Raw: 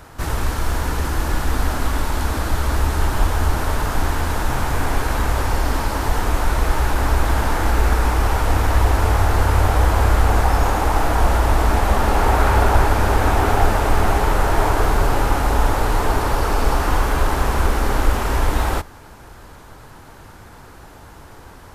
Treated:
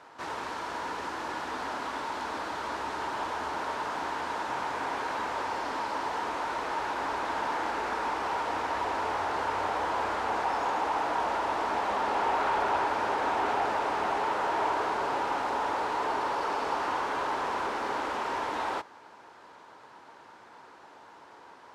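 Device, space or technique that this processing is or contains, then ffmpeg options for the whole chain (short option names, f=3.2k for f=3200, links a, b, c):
intercom: -af "highpass=350,lowpass=4.9k,equalizer=f=950:t=o:w=0.25:g=6,asoftclip=type=tanh:threshold=-12dB,volume=-8dB"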